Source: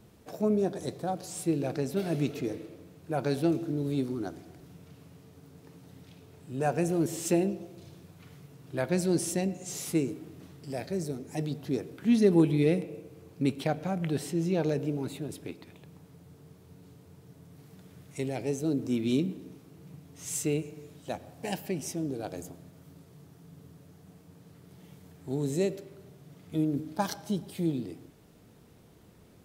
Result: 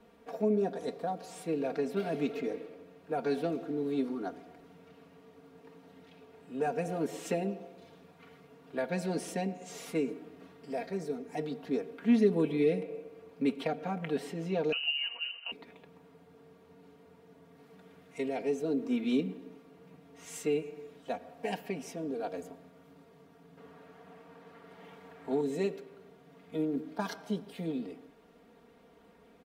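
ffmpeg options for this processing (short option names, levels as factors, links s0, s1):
-filter_complex "[0:a]asettb=1/sr,asplit=3[s0][s1][s2];[s0]atrim=end=14.724[s3];[s1]atrim=start=14.72:end=15.52,asetpts=PTS-STARTPTS,afade=t=in:d=0.004:c=qsin,afade=t=out:st=0.796:d=0.004:c=qsin,lowpass=f=2600:t=q:w=0.5098,lowpass=f=2600:t=q:w=0.6013,lowpass=f=2600:t=q:w=0.9,lowpass=f=2600:t=q:w=2.563,afreqshift=-3100[s4];[s2]atrim=start=15.516[s5];[s3][s4]acrossfade=d=0.004:c1=hsin:c2=qsin[s6];[s6][s5]acrossfade=d=0.004:c1=qsin:c2=hsin,asettb=1/sr,asplit=3[s7][s8][s9];[s7]atrim=end=23.574[s10];[s8]atrim=start=23.57:end=25.41,asetpts=PTS-STARTPTS,afade=t=in:d=0.004:c=qsin,afade=t=out:st=1.836:d=0.004:c=qsin,equalizer=f=1300:w=0.4:g=9[s11];[s9]atrim=start=25.406[s12];[s10][s11]acrossfade=d=0.004:c1=hsin:c2=qsin[s13];[s13][s12]acrossfade=d=0.004:c1=qsin:c2=hsin,bass=f=250:g=-12,treble=f=4000:g=-15,aecho=1:1:4.3:0.88,acrossover=split=410|3000[s14][s15][s16];[s15]acompressor=threshold=0.0224:ratio=6[s17];[s14][s17][s16]amix=inputs=3:normalize=0"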